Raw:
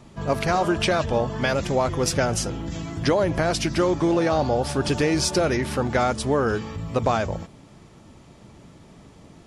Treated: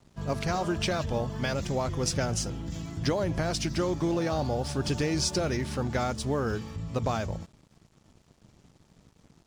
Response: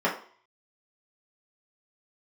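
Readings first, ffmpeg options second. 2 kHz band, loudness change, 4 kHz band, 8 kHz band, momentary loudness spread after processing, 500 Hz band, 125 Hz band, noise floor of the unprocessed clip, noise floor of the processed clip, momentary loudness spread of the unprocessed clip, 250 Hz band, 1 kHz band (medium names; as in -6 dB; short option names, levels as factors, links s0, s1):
-8.5 dB, -6.5 dB, -5.0 dB, -4.5 dB, 7 LU, -8.5 dB, -3.5 dB, -49 dBFS, -63 dBFS, 6 LU, -6.0 dB, -8.5 dB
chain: -af "lowpass=7200,aeval=exprs='sgn(val(0))*max(abs(val(0))-0.00355,0)':c=same,bass=f=250:g=6,treble=f=4000:g=8,volume=0.376"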